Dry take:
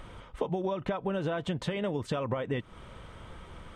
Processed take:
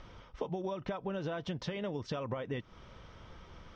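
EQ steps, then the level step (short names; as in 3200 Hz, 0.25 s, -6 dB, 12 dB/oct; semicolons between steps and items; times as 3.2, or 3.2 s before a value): synth low-pass 5600 Hz, resonance Q 5.9; air absorption 110 m; -5.5 dB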